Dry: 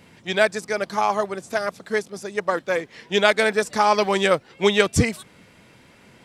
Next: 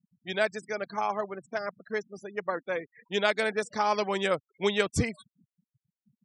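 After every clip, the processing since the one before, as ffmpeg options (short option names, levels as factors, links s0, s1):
-af "afftfilt=real='re*gte(hypot(re,im),0.0224)':imag='im*gte(hypot(re,im),0.0224)':win_size=1024:overlap=0.75,volume=0.376"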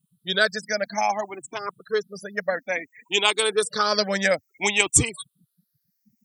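-af "afftfilt=real='re*pow(10,16/40*sin(2*PI*(0.65*log(max(b,1)*sr/1024/100)/log(2)-(0.58)*(pts-256)/sr)))':imag='im*pow(10,16/40*sin(2*PI*(0.65*log(max(b,1)*sr/1024/100)/log(2)-(0.58)*(pts-256)/sr)))':win_size=1024:overlap=0.75,crystalizer=i=4:c=0,volume=1.12"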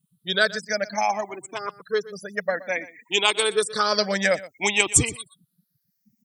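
-af "aecho=1:1:122:0.126"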